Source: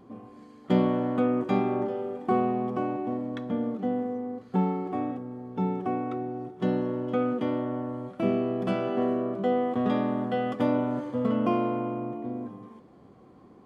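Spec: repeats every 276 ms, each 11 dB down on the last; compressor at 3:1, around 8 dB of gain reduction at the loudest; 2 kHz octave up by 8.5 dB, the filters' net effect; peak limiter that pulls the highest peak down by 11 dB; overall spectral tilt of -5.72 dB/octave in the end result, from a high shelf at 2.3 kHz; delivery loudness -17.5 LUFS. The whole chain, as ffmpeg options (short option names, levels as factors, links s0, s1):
-af "equalizer=f=2000:t=o:g=6.5,highshelf=f=2300:g=8.5,acompressor=threshold=0.0355:ratio=3,alimiter=level_in=1.58:limit=0.0631:level=0:latency=1,volume=0.631,aecho=1:1:276|552|828:0.282|0.0789|0.0221,volume=8.91"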